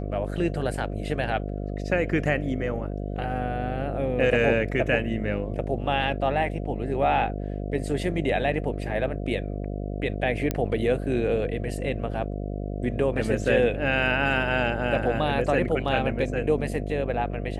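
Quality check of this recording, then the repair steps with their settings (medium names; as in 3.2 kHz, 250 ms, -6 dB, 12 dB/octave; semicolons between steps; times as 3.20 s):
buzz 50 Hz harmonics 14 -31 dBFS
10.51 s: pop -11 dBFS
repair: de-click; de-hum 50 Hz, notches 14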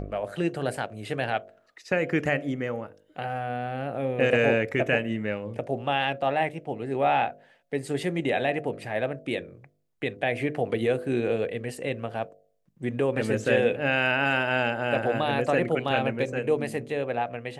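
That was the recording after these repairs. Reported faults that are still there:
nothing left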